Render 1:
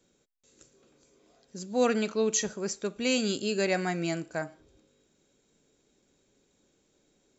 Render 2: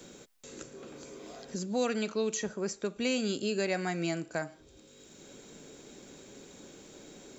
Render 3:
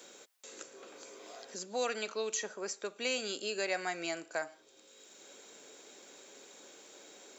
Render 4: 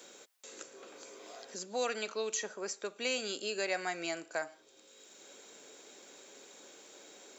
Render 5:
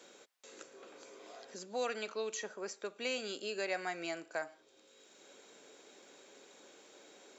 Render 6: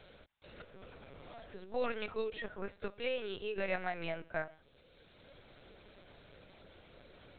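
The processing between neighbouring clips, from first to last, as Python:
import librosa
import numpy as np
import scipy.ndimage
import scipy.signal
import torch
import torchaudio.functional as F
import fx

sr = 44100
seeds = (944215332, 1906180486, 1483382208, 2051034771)

y1 = fx.band_squash(x, sr, depth_pct=70)
y1 = F.gain(torch.from_numpy(y1), -2.0).numpy()
y2 = scipy.signal.sosfilt(scipy.signal.butter(2, 530.0, 'highpass', fs=sr, output='sos'), y1)
y3 = y2
y4 = fx.high_shelf(y3, sr, hz=6700.0, db=-10.5)
y4 = F.gain(torch.from_numpy(y4), -2.0).numpy()
y5 = fx.lpc_vocoder(y4, sr, seeds[0], excitation='pitch_kept', order=10)
y5 = F.gain(torch.from_numpy(y5), 1.5).numpy()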